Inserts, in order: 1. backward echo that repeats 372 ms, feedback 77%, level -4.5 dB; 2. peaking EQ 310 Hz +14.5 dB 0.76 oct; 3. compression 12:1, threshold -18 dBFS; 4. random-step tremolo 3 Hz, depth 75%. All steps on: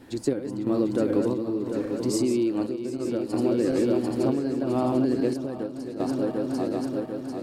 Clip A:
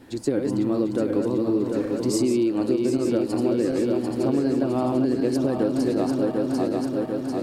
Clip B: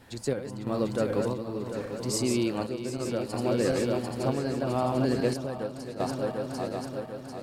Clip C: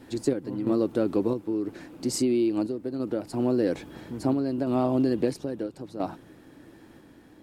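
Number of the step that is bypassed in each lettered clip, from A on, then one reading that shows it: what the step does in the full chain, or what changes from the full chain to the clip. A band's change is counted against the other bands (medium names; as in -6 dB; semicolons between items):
4, momentary loudness spread change -4 LU; 2, 250 Hz band -8.5 dB; 1, 8 kHz band +2.0 dB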